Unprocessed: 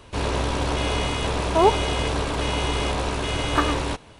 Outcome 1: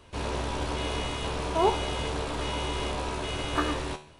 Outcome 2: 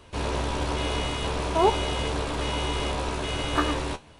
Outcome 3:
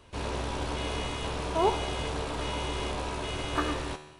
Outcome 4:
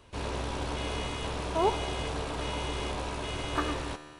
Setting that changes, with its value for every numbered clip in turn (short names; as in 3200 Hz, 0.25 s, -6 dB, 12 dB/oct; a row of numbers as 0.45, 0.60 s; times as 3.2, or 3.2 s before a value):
resonator, decay: 0.46, 0.16, 1, 2.2 s